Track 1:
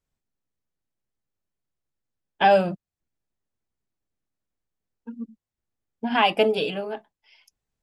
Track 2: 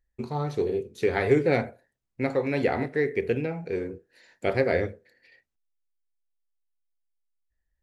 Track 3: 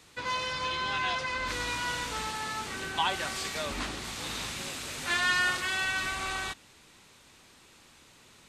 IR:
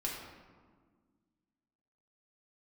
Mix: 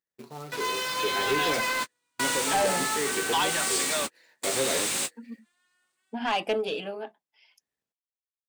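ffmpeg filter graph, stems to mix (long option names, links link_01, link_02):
-filter_complex "[0:a]adelay=100,volume=-9.5dB[link_01];[1:a]acrusher=bits=3:mode=log:mix=0:aa=0.000001,flanger=delay=6:depth=1.6:regen=62:speed=1.2:shape=sinusoidal,volume=-4.5dB,asplit=2[link_02][link_03];[2:a]equalizer=frequency=8800:width=1.7:gain=12.5,acrusher=bits=5:mix=0:aa=0.5,adelay=350,volume=1.5dB[link_04];[link_03]apad=whole_len=389646[link_05];[link_04][link_05]sidechaingate=range=-53dB:threshold=-58dB:ratio=16:detection=peak[link_06];[link_01][link_02][link_06]amix=inputs=3:normalize=0,highpass=210,dynaudnorm=framelen=760:gausssize=3:maxgain=5dB,asoftclip=type=tanh:threshold=-19.5dB"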